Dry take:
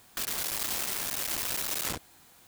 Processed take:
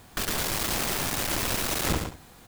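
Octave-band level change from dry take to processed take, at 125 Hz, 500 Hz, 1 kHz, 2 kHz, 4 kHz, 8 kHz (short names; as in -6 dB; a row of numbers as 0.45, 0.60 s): +15.0, +10.5, +8.5, +6.5, +4.5, +2.5 dB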